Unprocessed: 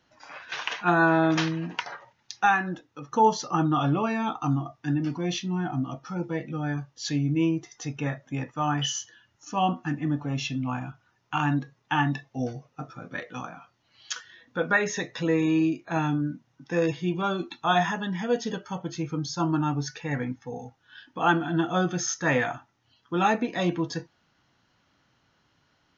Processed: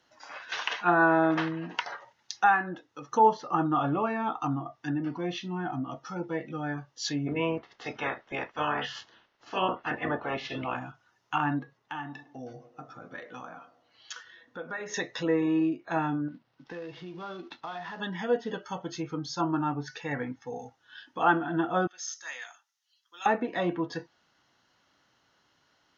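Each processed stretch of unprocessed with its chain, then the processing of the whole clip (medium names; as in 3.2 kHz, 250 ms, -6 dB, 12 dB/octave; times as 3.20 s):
7.26–10.75 s: spectral peaks clipped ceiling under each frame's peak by 24 dB + distance through air 260 m
11.77–14.94 s: treble shelf 4.9 kHz -11.5 dB + compression 2.5:1, threshold -38 dBFS + band-passed feedback delay 103 ms, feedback 57%, band-pass 430 Hz, level -12 dB
16.28–18.00 s: CVSD coder 32 kbps + compression 10:1, threshold -33 dBFS + distance through air 180 m
21.87–23.26 s: high-pass 770 Hz 6 dB/octave + differentiator
whole clip: band-stop 2.4 kHz, Q 15; low-pass that closes with the level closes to 2 kHz, closed at -23.5 dBFS; tone controls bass -9 dB, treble +2 dB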